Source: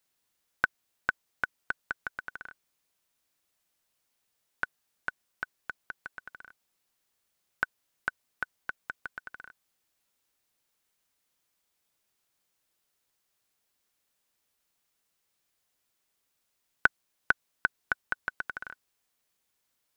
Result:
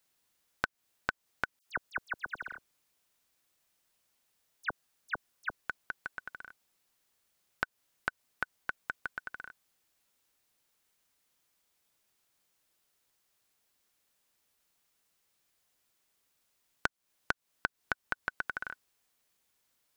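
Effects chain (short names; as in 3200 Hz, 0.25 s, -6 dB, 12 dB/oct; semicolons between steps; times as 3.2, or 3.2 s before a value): compressor 12:1, threshold -30 dBFS, peak gain reduction 15 dB; 1.59–5.56 dispersion lows, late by 73 ms, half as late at 2500 Hz; gain +2 dB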